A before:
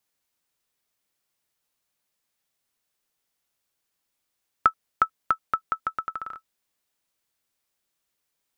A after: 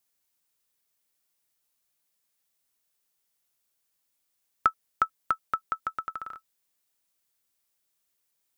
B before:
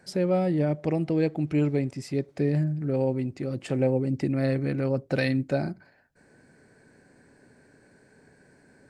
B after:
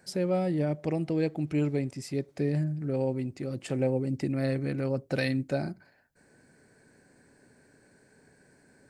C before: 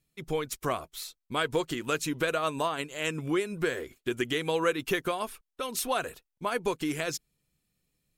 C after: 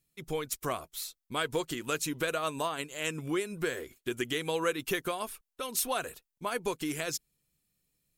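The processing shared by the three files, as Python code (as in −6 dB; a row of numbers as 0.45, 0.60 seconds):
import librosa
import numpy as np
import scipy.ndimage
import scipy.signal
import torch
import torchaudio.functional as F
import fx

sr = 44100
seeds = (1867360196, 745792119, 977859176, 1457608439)

y = fx.high_shelf(x, sr, hz=6000.0, db=8.0)
y = y * 10.0 ** (-3.5 / 20.0)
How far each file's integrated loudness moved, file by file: −3.0, −3.5, −2.5 LU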